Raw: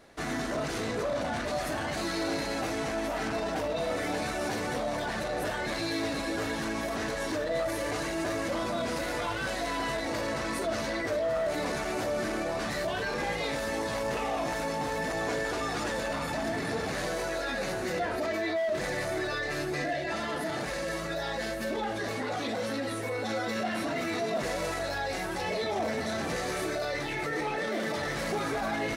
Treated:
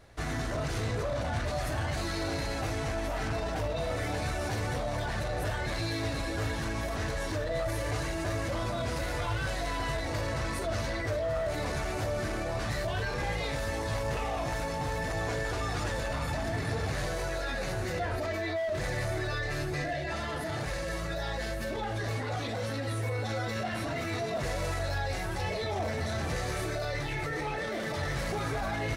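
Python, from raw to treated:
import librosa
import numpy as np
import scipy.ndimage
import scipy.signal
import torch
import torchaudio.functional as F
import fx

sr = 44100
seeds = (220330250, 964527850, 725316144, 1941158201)

y = fx.low_shelf_res(x, sr, hz=150.0, db=11.0, q=1.5)
y = F.gain(torch.from_numpy(y), -2.0).numpy()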